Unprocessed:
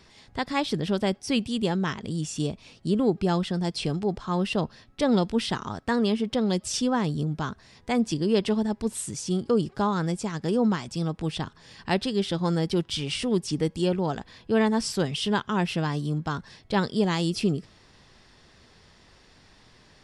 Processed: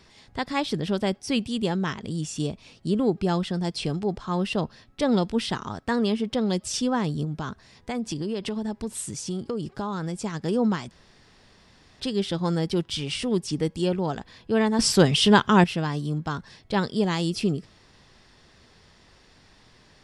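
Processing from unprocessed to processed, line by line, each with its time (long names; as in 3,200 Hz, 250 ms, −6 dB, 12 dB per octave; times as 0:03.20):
0:07.24–0:10.18: downward compressor, threshold −25 dBFS
0:10.91–0:12.00: fill with room tone
0:14.79–0:15.64: clip gain +8.5 dB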